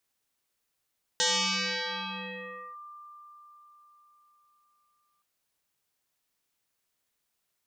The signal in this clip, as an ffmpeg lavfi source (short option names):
-f lavfi -i "aevalsrc='0.0794*pow(10,-3*t/4.7)*sin(2*PI*1190*t+8.7*clip(1-t/1.56,0,1)*sin(2*PI*0.58*1190*t))':d=4.02:s=44100"